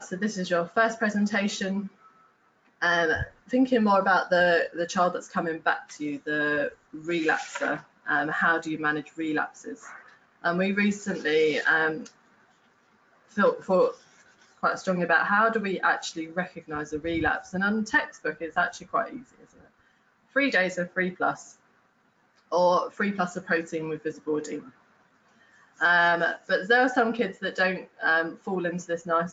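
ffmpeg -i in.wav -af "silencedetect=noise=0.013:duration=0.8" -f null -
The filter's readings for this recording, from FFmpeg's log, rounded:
silence_start: 1.87
silence_end: 2.82 | silence_duration: 0.95
silence_start: 12.07
silence_end: 13.37 | silence_duration: 1.30
silence_start: 19.19
silence_end: 20.36 | silence_duration: 1.16
silence_start: 21.46
silence_end: 22.52 | silence_duration: 1.06
silence_start: 24.67
silence_end: 25.80 | silence_duration: 1.13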